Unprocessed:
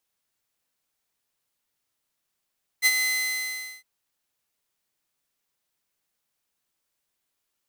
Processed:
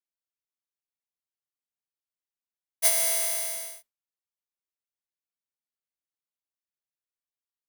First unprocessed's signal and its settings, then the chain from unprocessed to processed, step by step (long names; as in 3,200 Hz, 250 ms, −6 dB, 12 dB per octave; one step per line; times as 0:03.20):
note with an ADSR envelope saw 2,040 Hz, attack 40 ms, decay 45 ms, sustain −7 dB, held 0.20 s, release 809 ms −12.5 dBFS
samples in bit-reversed order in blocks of 32 samples
noise gate with hold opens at −39 dBFS